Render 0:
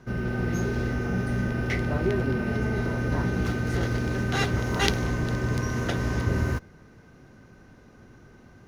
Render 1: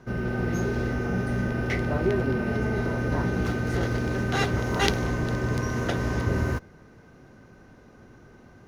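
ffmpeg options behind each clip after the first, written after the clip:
-af "equalizer=f=620:w=0.55:g=3.5,volume=0.891"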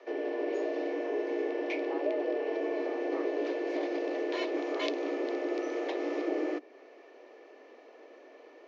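-filter_complex "[0:a]afreqshift=230,acrossover=split=430[s0][s1];[s1]acompressor=threshold=0.00891:ratio=2[s2];[s0][s2]amix=inputs=2:normalize=0,highpass=f=320:w=0.5412,highpass=f=320:w=1.3066,equalizer=f=330:t=q:w=4:g=-4,equalizer=f=900:t=q:w=4:g=-5,equalizer=f=1500:t=q:w=4:g=-10,equalizer=f=2500:t=q:w=4:g=4,lowpass=f=5000:w=0.5412,lowpass=f=5000:w=1.3066"

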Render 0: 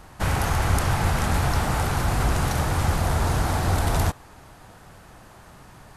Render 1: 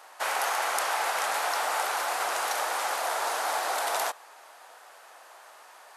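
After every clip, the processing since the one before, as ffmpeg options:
-af "highpass=f=550:w=0.5412,highpass=f=550:w=1.3066"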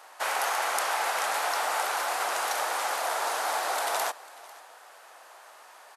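-af "aecho=1:1:496:0.0891"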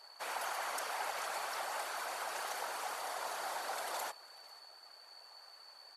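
-af "aeval=exprs='val(0)+0.00708*sin(2*PI*4500*n/s)':c=same,afftfilt=real='hypot(re,im)*cos(2*PI*random(0))':imag='hypot(re,im)*sin(2*PI*random(1))':win_size=512:overlap=0.75,volume=0.531"

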